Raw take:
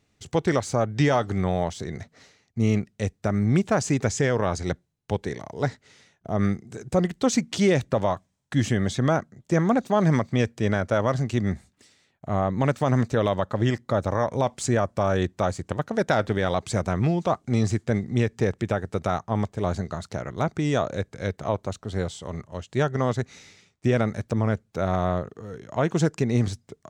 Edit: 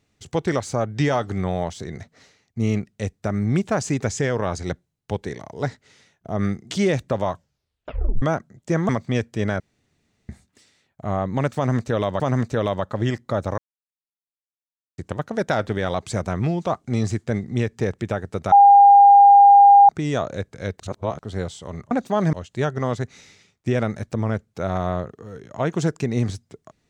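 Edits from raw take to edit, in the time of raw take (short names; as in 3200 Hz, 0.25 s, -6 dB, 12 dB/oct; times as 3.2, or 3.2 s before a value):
6.71–7.53 cut
8.13 tape stop 0.91 s
9.71–10.13 move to 22.51
10.84–11.53 room tone
12.8–13.44 loop, 2 plays
14.18–15.58 mute
19.12–20.49 bleep 805 Hz -6.5 dBFS
21.4–21.79 reverse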